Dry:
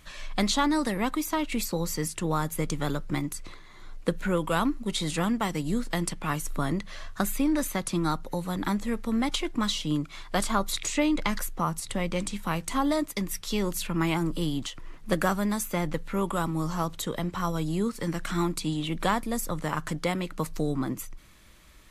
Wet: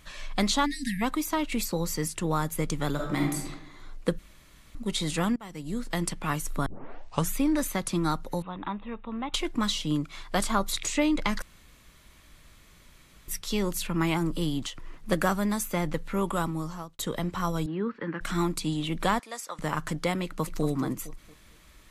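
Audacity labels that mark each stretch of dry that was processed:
0.660000	1.020000	time-frequency box erased 290–1,600 Hz
2.940000	3.470000	thrown reverb, RT60 0.88 s, DRR −1.5 dB
4.190000	4.750000	fill with room tone
5.360000	6.040000	fade in, from −23 dB
6.660000	6.660000	tape start 0.69 s
8.420000	9.340000	Chebyshev low-pass with heavy ripple 3,800 Hz, ripple 9 dB
11.420000	13.280000	fill with room tone
16.410000	16.990000	fade out
17.660000	18.210000	loudspeaker in its box 220–2,600 Hz, peaks and dips at 680 Hz −10 dB, 1,600 Hz +7 dB, 2,200 Hz −4 dB
19.190000	19.590000	band-pass filter 770–7,500 Hz
20.240000	20.640000	delay throw 230 ms, feedback 35%, level −8 dB

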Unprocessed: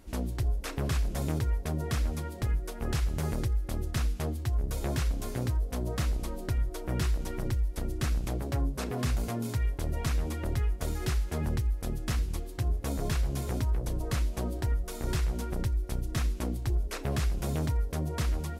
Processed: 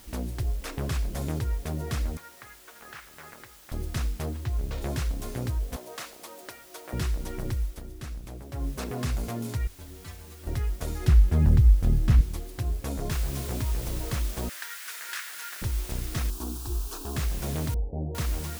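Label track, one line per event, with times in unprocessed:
2.170000	3.720000	resonant band-pass 1,600 Hz, Q 1.6
4.290000	4.820000	linearly interpolated sample-rate reduction rate divided by 4×
5.760000	6.930000	high-pass filter 570 Hz
7.630000	8.700000	duck −8.5 dB, fades 0.19 s
9.670000	10.470000	stiff-string resonator 88 Hz, decay 0.41 s, inharmonicity 0.008
11.080000	12.210000	bass and treble bass +12 dB, treble −7 dB
13.110000	13.110000	noise floor change −53 dB −42 dB
14.490000	15.620000	high-pass with resonance 1,600 Hz, resonance Q 2.7
16.300000	17.160000	phaser with its sweep stopped centre 550 Hz, stages 6
17.740000	18.150000	Butterworth low-pass 860 Hz 96 dB per octave

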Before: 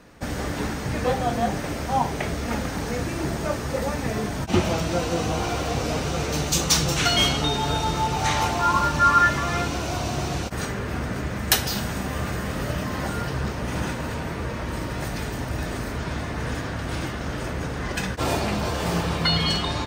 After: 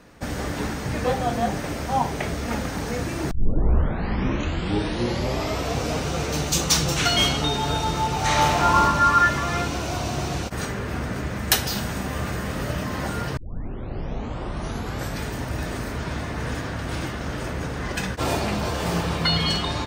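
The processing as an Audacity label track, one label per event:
3.310000	3.310000	tape start 2.46 s
8.240000	8.810000	thrown reverb, RT60 1.4 s, DRR −1.5 dB
13.370000	13.370000	tape start 1.86 s

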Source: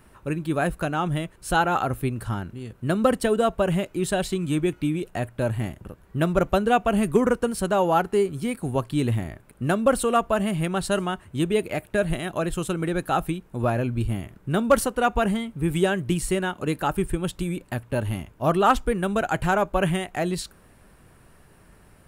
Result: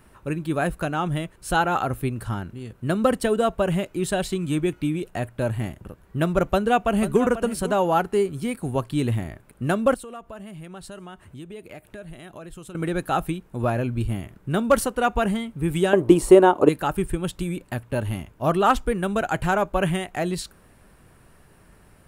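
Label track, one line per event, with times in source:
6.460000	7.230000	delay throw 490 ms, feedback 10%, level −12.5 dB
9.940000	12.750000	downward compressor 3 to 1, threshold −41 dBFS
15.930000	16.690000	flat-topped bell 560 Hz +14.5 dB 2.4 octaves

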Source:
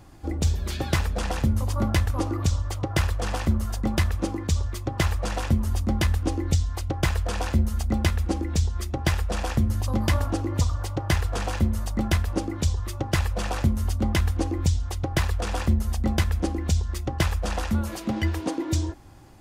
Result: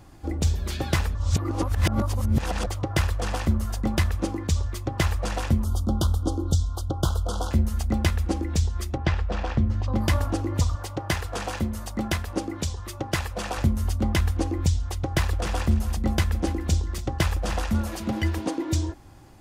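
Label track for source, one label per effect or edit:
1.150000	2.670000	reverse
5.640000	7.510000	elliptic band-stop filter 1,400–3,200 Hz
8.970000	9.960000	high-frequency loss of the air 170 metres
10.750000	13.580000	low-shelf EQ 99 Hz −10.5 dB
14.750000	18.460000	single-tap delay 288 ms −14 dB

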